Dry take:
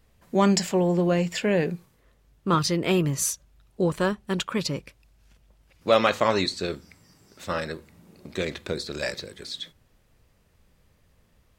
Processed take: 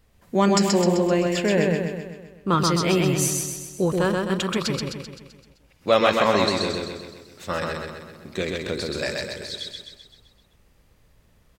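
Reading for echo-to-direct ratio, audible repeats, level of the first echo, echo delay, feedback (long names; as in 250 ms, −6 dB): −1.5 dB, 6, −3.0 dB, 129 ms, 54%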